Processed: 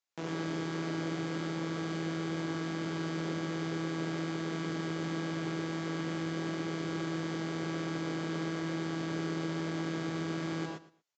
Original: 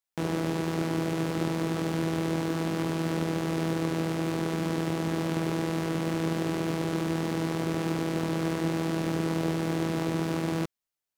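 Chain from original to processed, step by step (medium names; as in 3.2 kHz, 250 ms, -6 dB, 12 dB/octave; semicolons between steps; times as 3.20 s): high-pass 250 Hz 6 dB/octave; peak limiter -27.5 dBFS, peak gain reduction 10 dB; feedback delay 117 ms, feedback 23%, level -17 dB; gated-style reverb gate 140 ms rising, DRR 0.5 dB; resampled via 16 kHz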